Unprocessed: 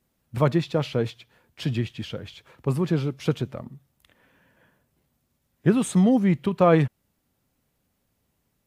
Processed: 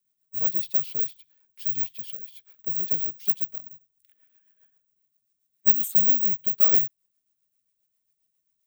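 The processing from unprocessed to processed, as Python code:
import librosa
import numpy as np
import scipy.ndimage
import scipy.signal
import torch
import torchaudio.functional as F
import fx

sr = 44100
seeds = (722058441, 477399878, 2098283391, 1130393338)

y = (np.kron(scipy.signal.resample_poly(x, 1, 2), np.eye(2)[0]) * 2)[:len(x)]
y = fx.rotary(y, sr, hz=7.5)
y = F.preemphasis(torch.from_numpy(y), 0.9).numpy()
y = y * librosa.db_to_amplitude(-1.0)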